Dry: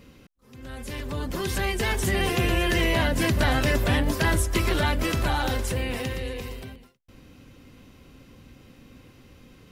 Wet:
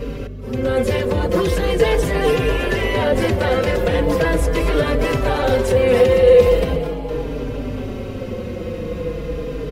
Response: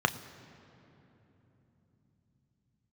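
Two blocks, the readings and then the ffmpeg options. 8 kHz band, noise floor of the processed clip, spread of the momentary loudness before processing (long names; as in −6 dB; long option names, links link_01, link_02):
−1.5 dB, −28 dBFS, 13 LU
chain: -filter_complex "[0:a]areverse,acompressor=threshold=-34dB:ratio=8,areverse,aeval=exprs='val(0)+0.00316*(sin(2*PI*50*n/s)+sin(2*PI*2*50*n/s)/2+sin(2*PI*3*50*n/s)/3+sin(2*PI*4*50*n/s)/4+sin(2*PI*5*50*n/s)/5)':channel_layout=same,highshelf=frequency=3400:gain=-10.5,bandreject=frequency=830:width=18,asplit=8[link_01][link_02][link_03][link_04][link_05][link_06][link_07][link_08];[link_02]adelay=230,afreqshift=110,volume=-15dB[link_09];[link_03]adelay=460,afreqshift=220,volume=-19dB[link_10];[link_04]adelay=690,afreqshift=330,volume=-23dB[link_11];[link_05]adelay=920,afreqshift=440,volume=-27dB[link_12];[link_06]adelay=1150,afreqshift=550,volume=-31.1dB[link_13];[link_07]adelay=1380,afreqshift=660,volume=-35.1dB[link_14];[link_08]adelay=1610,afreqshift=770,volume=-39.1dB[link_15];[link_01][link_09][link_10][link_11][link_12][link_13][link_14][link_15]amix=inputs=8:normalize=0,apsyclip=35dB,equalizer=frequency=480:width=3.2:gain=14,asplit=2[link_16][link_17];[link_17]adelay=4.6,afreqshift=-0.4[link_18];[link_16][link_18]amix=inputs=2:normalize=1,volume=-12dB"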